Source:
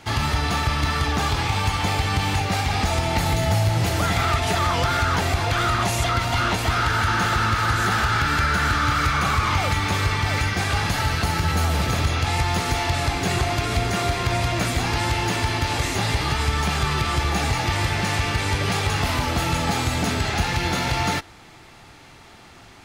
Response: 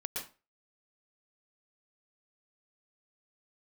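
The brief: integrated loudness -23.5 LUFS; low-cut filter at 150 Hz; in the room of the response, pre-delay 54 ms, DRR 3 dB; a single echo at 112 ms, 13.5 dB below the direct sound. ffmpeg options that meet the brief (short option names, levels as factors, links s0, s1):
-filter_complex "[0:a]highpass=150,aecho=1:1:112:0.211,asplit=2[s0][s1];[1:a]atrim=start_sample=2205,adelay=54[s2];[s1][s2]afir=irnorm=-1:irlink=0,volume=0.596[s3];[s0][s3]amix=inputs=2:normalize=0,volume=0.75"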